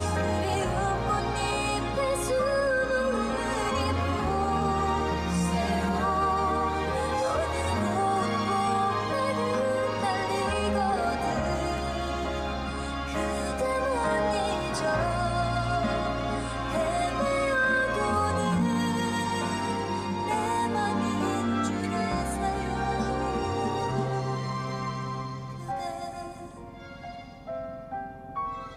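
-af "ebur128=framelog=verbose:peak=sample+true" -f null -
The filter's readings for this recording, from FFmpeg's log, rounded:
Integrated loudness:
  I:         -27.8 LUFS
  Threshold: -38.0 LUFS
Loudness range:
  LRA:         4.8 LU
  Threshold: -47.8 LUFS
  LRA low:   -31.2 LUFS
  LRA high:  -26.5 LUFS
Sample peak:
  Peak:      -15.1 dBFS
True peak:
  Peak:      -15.1 dBFS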